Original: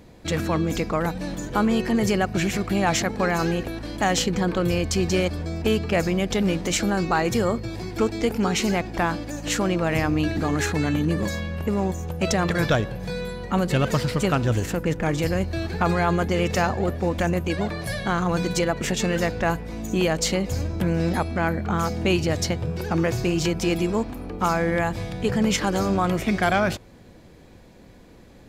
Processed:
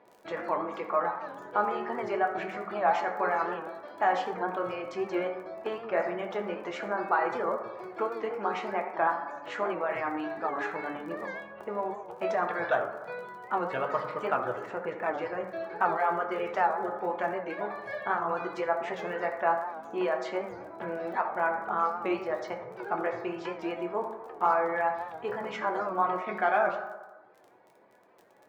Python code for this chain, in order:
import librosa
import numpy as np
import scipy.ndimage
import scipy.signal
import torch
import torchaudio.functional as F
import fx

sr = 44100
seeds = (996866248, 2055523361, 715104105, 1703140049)

y = scipy.signal.sosfilt(scipy.signal.butter(2, 710.0, 'highpass', fs=sr, output='sos'), x)
y = fx.dereverb_blind(y, sr, rt60_s=1.0)
y = scipy.signal.sosfilt(scipy.signal.butter(2, 1200.0, 'lowpass', fs=sr, output='sos'), y)
y = fx.dmg_crackle(y, sr, seeds[0], per_s=22.0, level_db=-45.0)
y = fx.rev_fdn(y, sr, rt60_s=1.2, lf_ratio=0.85, hf_ratio=0.4, size_ms=48.0, drr_db=1.0)
y = fx.record_warp(y, sr, rpm=78.0, depth_cents=100.0)